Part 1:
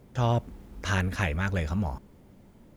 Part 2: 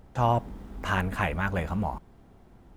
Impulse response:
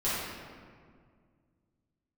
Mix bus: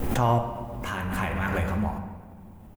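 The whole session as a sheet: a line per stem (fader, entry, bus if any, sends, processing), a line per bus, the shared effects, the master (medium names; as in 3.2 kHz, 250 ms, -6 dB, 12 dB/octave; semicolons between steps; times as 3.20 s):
+1.0 dB, 0.00 s, no send, comb filter that takes the minimum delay 3.7 ms; compression, threshold -35 dBFS, peak gain reduction 11.5 dB; static phaser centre 920 Hz, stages 8
-2.5 dB, 2.7 ms, send -11.5 dB, none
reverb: on, RT60 2.0 s, pre-delay 5 ms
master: treble shelf 10 kHz +10 dB; tremolo triangle 0.76 Hz, depth 50%; swell ahead of each attack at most 29 dB/s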